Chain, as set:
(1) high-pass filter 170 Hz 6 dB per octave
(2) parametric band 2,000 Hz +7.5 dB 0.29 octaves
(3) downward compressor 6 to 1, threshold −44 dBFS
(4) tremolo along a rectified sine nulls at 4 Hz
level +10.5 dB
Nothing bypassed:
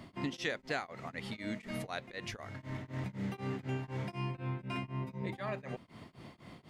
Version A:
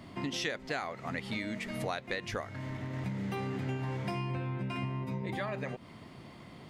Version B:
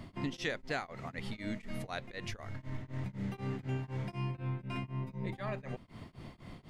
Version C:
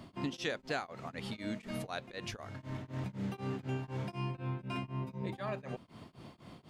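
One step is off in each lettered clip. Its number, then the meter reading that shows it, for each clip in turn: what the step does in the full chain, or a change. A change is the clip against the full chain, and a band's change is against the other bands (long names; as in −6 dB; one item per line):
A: 4, change in momentary loudness spread −2 LU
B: 1, 125 Hz band +2.5 dB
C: 2, 2 kHz band −2.5 dB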